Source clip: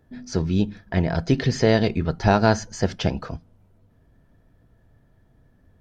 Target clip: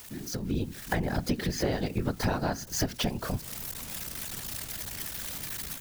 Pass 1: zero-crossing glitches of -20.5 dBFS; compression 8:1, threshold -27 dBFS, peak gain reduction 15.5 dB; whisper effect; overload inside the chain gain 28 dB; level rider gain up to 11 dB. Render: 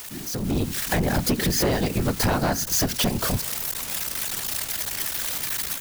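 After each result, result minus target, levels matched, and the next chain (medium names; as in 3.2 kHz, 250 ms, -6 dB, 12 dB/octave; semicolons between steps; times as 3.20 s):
compression: peak gain reduction -8.5 dB; zero-crossing glitches: distortion +9 dB
zero-crossing glitches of -20.5 dBFS; compression 8:1, threshold -36.5 dBFS, peak gain reduction 24 dB; whisper effect; overload inside the chain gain 28 dB; level rider gain up to 11 dB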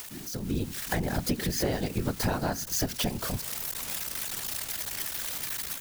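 zero-crossing glitches: distortion +9 dB
zero-crossing glitches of -30 dBFS; compression 8:1, threshold -36.5 dBFS, peak gain reduction 24 dB; whisper effect; overload inside the chain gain 28 dB; level rider gain up to 11 dB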